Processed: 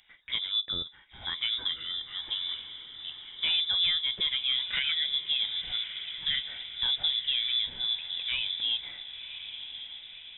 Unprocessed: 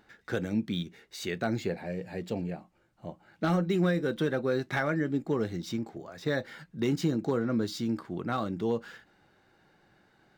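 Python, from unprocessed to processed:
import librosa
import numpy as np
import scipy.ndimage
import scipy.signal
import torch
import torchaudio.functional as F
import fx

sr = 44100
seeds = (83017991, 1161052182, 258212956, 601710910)

p1 = x + fx.echo_diffused(x, sr, ms=1054, feedback_pct=58, wet_db=-11.0, dry=0)
p2 = fx.freq_invert(p1, sr, carrier_hz=3700)
y = p2 * librosa.db_to_amplitude(-1.0)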